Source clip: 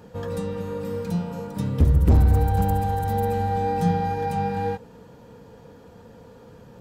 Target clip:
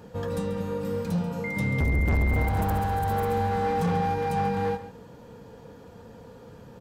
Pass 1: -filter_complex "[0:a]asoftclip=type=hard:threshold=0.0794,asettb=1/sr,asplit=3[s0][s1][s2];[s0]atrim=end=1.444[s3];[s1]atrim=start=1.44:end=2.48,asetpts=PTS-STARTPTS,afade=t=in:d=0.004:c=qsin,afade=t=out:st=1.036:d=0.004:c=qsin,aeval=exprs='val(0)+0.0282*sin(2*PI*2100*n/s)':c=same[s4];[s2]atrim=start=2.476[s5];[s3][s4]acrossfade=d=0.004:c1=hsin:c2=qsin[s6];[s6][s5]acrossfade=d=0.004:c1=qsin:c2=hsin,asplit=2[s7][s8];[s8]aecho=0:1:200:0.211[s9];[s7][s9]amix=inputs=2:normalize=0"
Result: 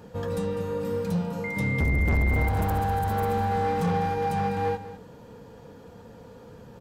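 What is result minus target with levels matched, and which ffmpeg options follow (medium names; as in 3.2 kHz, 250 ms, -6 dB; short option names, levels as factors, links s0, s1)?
echo 63 ms late
-filter_complex "[0:a]asoftclip=type=hard:threshold=0.0794,asettb=1/sr,asplit=3[s0][s1][s2];[s0]atrim=end=1.444[s3];[s1]atrim=start=1.44:end=2.48,asetpts=PTS-STARTPTS,afade=t=in:d=0.004:c=qsin,afade=t=out:st=1.036:d=0.004:c=qsin,aeval=exprs='val(0)+0.0282*sin(2*PI*2100*n/s)':c=same[s4];[s2]atrim=start=2.476[s5];[s3][s4]acrossfade=d=0.004:c1=hsin:c2=qsin[s6];[s6][s5]acrossfade=d=0.004:c1=qsin:c2=hsin,asplit=2[s7][s8];[s8]aecho=0:1:137:0.211[s9];[s7][s9]amix=inputs=2:normalize=0"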